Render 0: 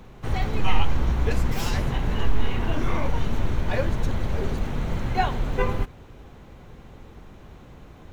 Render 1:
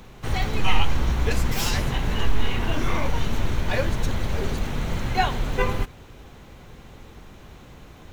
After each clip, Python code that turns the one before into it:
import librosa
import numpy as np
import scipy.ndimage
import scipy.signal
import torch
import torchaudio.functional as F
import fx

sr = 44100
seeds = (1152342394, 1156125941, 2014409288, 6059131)

y = fx.high_shelf(x, sr, hz=2000.0, db=8.0)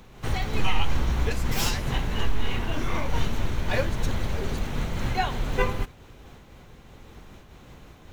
y = fx.am_noise(x, sr, seeds[0], hz=5.7, depth_pct=55)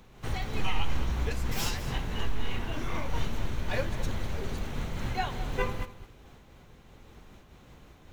y = x + 10.0 ** (-14.5 / 20.0) * np.pad(x, (int(210 * sr / 1000.0), 0))[:len(x)]
y = y * librosa.db_to_amplitude(-5.5)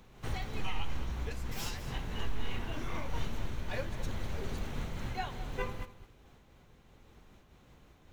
y = fx.rider(x, sr, range_db=10, speed_s=0.5)
y = y * librosa.db_to_amplitude(-5.5)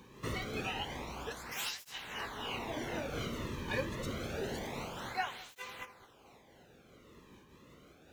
y = fx.flanger_cancel(x, sr, hz=0.27, depth_ms=1.5)
y = y * librosa.db_to_amplitude(6.0)